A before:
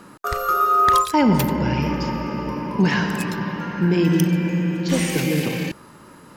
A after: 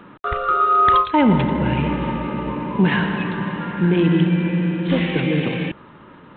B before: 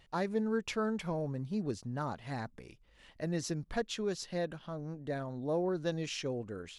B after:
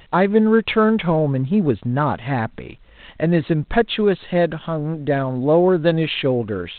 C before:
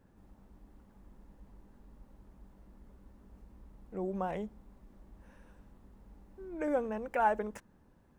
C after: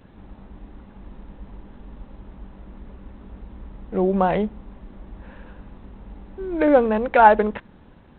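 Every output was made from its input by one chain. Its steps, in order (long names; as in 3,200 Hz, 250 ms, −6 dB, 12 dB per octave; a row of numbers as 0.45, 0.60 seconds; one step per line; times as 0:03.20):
G.726 32 kbit/s 8,000 Hz
loudness normalisation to −19 LKFS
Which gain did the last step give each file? +1.5, +17.5, +16.0 decibels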